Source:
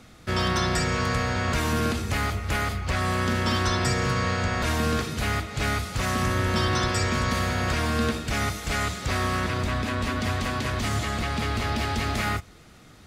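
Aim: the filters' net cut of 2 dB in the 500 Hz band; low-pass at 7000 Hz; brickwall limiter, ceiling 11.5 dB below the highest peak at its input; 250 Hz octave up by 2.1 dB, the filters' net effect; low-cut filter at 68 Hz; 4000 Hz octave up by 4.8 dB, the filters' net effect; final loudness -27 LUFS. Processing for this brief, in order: HPF 68 Hz; LPF 7000 Hz; bell 250 Hz +3.5 dB; bell 500 Hz -4 dB; bell 4000 Hz +6.5 dB; gain +4 dB; limiter -18.5 dBFS

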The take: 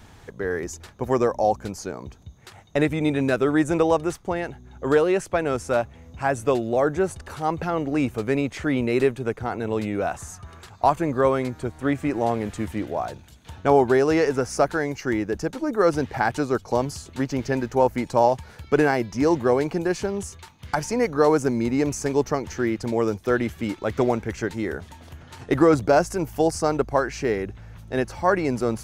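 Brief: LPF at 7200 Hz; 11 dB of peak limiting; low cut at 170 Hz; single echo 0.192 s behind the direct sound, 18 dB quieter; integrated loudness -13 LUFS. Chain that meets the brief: HPF 170 Hz; LPF 7200 Hz; limiter -16.5 dBFS; echo 0.192 s -18 dB; gain +15 dB

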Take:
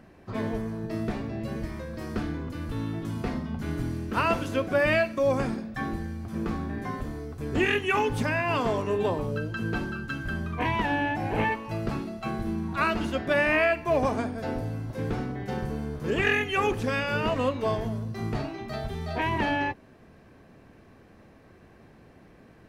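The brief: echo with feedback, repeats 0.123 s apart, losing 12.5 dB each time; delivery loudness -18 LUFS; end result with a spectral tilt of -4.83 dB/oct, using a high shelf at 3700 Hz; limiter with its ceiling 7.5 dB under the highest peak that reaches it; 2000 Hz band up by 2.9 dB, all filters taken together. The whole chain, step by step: bell 2000 Hz +5 dB; high shelf 3700 Hz -5.5 dB; limiter -17.5 dBFS; feedback echo 0.123 s, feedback 24%, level -12.5 dB; gain +11 dB

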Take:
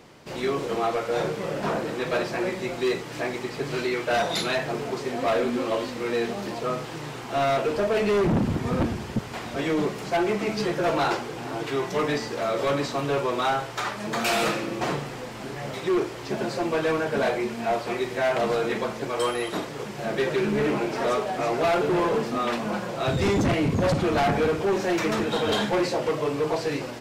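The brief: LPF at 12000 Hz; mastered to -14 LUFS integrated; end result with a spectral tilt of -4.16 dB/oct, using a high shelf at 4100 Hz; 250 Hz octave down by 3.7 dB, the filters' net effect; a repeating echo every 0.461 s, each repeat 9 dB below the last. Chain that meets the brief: LPF 12000 Hz; bell 250 Hz -5.5 dB; high shelf 4100 Hz -7 dB; feedback echo 0.461 s, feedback 35%, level -9 dB; gain +13 dB

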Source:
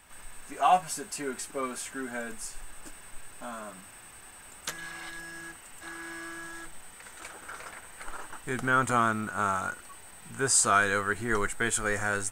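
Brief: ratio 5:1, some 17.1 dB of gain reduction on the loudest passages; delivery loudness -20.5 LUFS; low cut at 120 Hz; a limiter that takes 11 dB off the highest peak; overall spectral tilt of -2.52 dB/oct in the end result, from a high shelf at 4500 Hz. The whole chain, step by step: HPF 120 Hz; high shelf 4500 Hz -5 dB; compressor 5:1, threshold -38 dBFS; gain +25 dB; limiter -10.5 dBFS

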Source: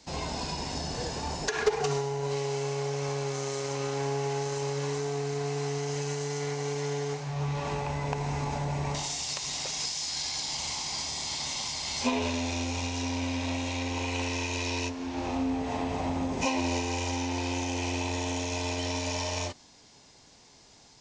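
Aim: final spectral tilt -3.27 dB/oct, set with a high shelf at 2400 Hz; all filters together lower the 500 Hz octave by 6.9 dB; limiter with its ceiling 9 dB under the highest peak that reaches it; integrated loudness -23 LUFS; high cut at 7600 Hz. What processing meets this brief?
LPF 7600 Hz; bell 500 Hz -9 dB; high shelf 2400 Hz +4 dB; gain +9.5 dB; limiter -14 dBFS

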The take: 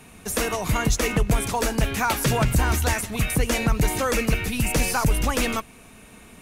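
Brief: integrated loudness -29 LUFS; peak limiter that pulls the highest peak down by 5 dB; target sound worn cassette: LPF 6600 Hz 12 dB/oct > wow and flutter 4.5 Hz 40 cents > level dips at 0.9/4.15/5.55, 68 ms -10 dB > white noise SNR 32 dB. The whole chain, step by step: limiter -16 dBFS; LPF 6600 Hz 12 dB/oct; wow and flutter 4.5 Hz 40 cents; level dips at 0.9/4.15/5.55, 68 ms -10 dB; white noise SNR 32 dB; gain -2.5 dB

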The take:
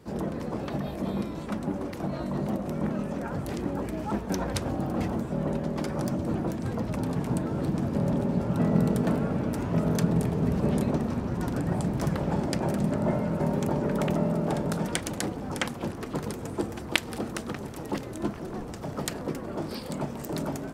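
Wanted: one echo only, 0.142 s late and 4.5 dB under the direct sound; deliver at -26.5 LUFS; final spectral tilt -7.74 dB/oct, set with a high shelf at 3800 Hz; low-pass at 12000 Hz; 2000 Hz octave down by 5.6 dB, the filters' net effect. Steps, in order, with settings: LPF 12000 Hz; bell 2000 Hz -5.5 dB; high shelf 3800 Hz -7 dB; echo 0.142 s -4.5 dB; gain +2 dB

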